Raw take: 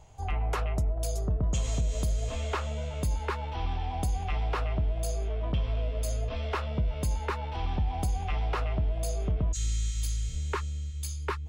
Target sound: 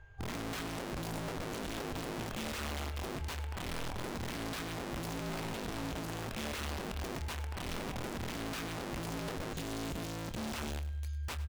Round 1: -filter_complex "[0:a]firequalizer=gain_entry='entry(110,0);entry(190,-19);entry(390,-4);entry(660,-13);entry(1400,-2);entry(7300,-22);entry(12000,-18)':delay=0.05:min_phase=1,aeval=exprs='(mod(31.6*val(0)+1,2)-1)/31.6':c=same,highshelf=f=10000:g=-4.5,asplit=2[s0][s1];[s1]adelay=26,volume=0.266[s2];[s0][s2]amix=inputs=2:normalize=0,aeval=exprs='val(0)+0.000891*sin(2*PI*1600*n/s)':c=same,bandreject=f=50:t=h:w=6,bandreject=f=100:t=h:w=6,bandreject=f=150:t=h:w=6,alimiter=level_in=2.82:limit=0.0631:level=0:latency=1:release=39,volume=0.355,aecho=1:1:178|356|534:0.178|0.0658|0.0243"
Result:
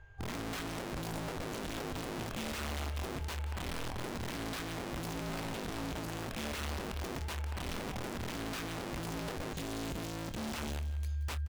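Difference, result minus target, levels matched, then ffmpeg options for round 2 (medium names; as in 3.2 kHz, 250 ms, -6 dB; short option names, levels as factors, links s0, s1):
echo 77 ms late
-filter_complex "[0:a]firequalizer=gain_entry='entry(110,0);entry(190,-19);entry(390,-4);entry(660,-13);entry(1400,-2);entry(7300,-22);entry(12000,-18)':delay=0.05:min_phase=1,aeval=exprs='(mod(31.6*val(0)+1,2)-1)/31.6':c=same,highshelf=f=10000:g=-4.5,asplit=2[s0][s1];[s1]adelay=26,volume=0.266[s2];[s0][s2]amix=inputs=2:normalize=0,aeval=exprs='val(0)+0.000891*sin(2*PI*1600*n/s)':c=same,bandreject=f=50:t=h:w=6,bandreject=f=100:t=h:w=6,bandreject=f=150:t=h:w=6,alimiter=level_in=2.82:limit=0.0631:level=0:latency=1:release=39,volume=0.355,aecho=1:1:101|202|303:0.178|0.0658|0.0243"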